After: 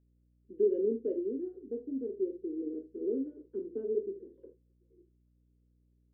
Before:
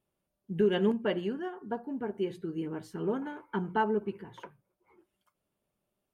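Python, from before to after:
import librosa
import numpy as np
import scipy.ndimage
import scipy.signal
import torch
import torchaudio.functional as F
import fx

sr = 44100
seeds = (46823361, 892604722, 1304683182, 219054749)

y = scipy.signal.sosfilt(scipy.signal.ellip(3, 1.0, 40, [250.0, 500.0], 'bandpass', fs=sr, output='sos'), x)
y = fx.room_early_taps(y, sr, ms=(26, 49, 76), db=(-9.0, -11.0, -15.5))
y = fx.add_hum(y, sr, base_hz=60, snr_db=33)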